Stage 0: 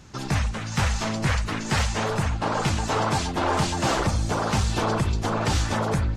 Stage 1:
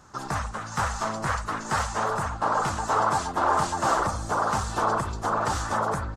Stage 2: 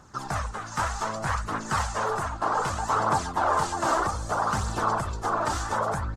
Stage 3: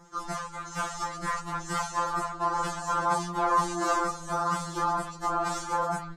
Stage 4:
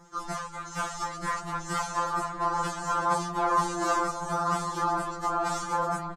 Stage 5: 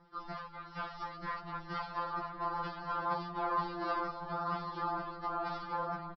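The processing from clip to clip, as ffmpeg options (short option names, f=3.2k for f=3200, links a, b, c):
-af "firequalizer=gain_entry='entry(140,0);entry(640,9);entry(1200,15);entry(2300,-2);entry(7800,8);entry(11000,6)':delay=0.05:min_phase=1,volume=-9dB"
-af "aphaser=in_gain=1:out_gain=1:delay=3.3:decay=0.37:speed=0.64:type=triangular,volume=-1.5dB"
-af "afftfilt=real='re*2.83*eq(mod(b,8),0)':imag='im*2.83*eq(mod(b,8),0)':win_size=2048:overlap=0.75"
-filter_complex "[0:a]asplit=2[a][b];[b]adelay=1108,volume=-8dB,highshelf=f=4k:g=-24.9[c];[a][c]amix=inputs=2:normalize=0"
-af "aresample=11025,aresample=44100,volume=-8.5dB"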